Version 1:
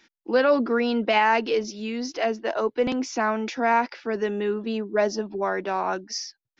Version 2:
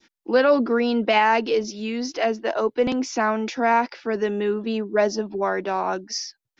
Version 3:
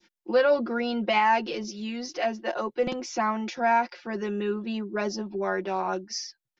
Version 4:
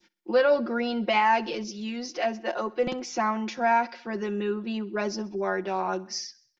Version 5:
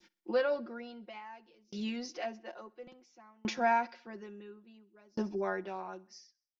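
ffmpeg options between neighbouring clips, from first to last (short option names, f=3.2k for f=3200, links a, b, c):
-af "adynamicequalizer=threshold=0.0158:dfrequency=1800:dqfactor=0.86:tfrequency=1800:tqfactor=0.86:attack=5:release=100:ratio=0.375:range=2.5:mode=cutabove:tftype=bell,volume=2.5dB"
-af "aecho=1:1:5.6:0.77,volume=-6.5dB"
-af "aecho=1:1:64|128|192|256:0.0794|0.0453|0.0258|0.0147"
-af "aeval=exprs='val(0)*pow(10,-36*if(lt(mod(0.58*n/s,1),2*abs(0.58)/1000),1-mod(0.58*n/s,1)/(2*abs(0.58)/1000),(mod(0.58*n/s,1)-2*abs(0.58)/1000)/(1-2*abs(0.58)/1000))/20)':c=same"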